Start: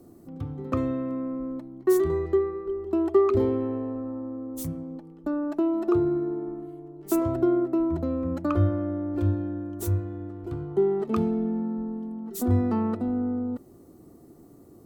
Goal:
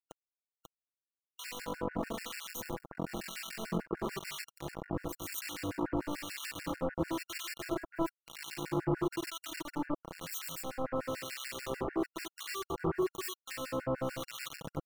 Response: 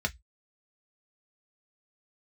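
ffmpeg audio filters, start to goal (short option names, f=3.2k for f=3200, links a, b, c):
-filter_complex "[0:a]areverse,aecho=1:1:128.3|244.9:0.282|0.708,acompressor=mode=upward:threshold=-32dB:ratio=2.5,asplit=2[a][b];[1:a]atrim=start_sample=2205,afade=t=out:st=0.17:d=0.01,atrim=end_sample=7938[c];[b][c]afir=irnorm=-1:irlink=0,volume=-16.5dB[d];[a][d]amix=inputs=2:normalize=0,acompressor=threshold=-29dB:ratio=10,superequalizer=14b=0.251:15b=1.41:16b=0.282,acrusher=bits=4:mix=0:aa=0.000001,adynamicequalizer=threshold=0.00282:dfrequency=730:dqfactor=6.2:tfrequency=730:tqfactor=6.2:attack=5:release=100:ratio=0.375:range=1.5:mode=cutabove:tftype=bell,aecho=1:1:6.1:0.47,acrossover=split=1500[e][f];[e]aeval=exprs='val(0)*(1-1/2+1/2*cos(2*PI*1*n/s))':c=same[g];[f]aeval=exprs='val(0)*(1-1/2-1/2*cos(2*PI*1*n/s))':c=same[h];[g][h]amix=inputs=2:normalize=0,afftfilt=real='re*gt(sin(2*PI*6.8*pts/sr)*(1-2*mod(floor(b*sr/1024/1400),2)),0)':imag='im*gt(sin(2*PI*6.8*pts/sr)*(1-2*mod(floor(b*sr/1024/1400),2)),0)':win_size=1024:overlap=0.75"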